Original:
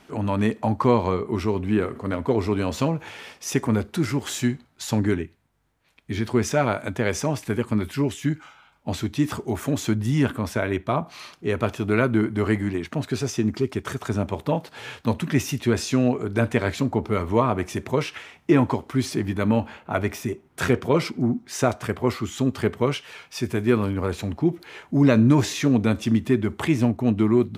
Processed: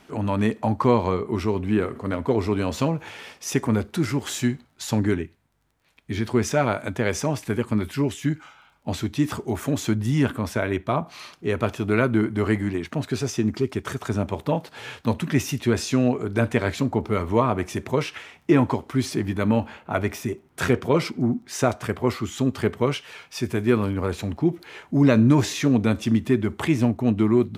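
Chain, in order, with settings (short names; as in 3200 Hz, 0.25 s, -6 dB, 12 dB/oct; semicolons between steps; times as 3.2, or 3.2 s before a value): crackle 17/s -50 dBFS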